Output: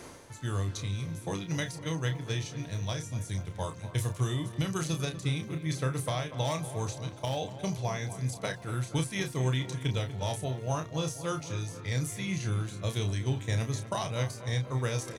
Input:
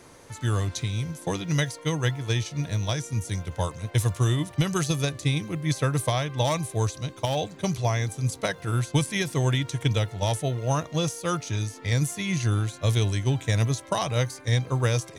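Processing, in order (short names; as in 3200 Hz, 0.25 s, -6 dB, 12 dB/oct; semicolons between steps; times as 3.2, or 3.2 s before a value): reverse; upward compressor, threshold -27 dBFS; reverse; doubler 31 ms -7 dB; darkening echo 0.242 s, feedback 64%, low-pass 2100 Hz, level -12.5 dB; gain -7.5 dB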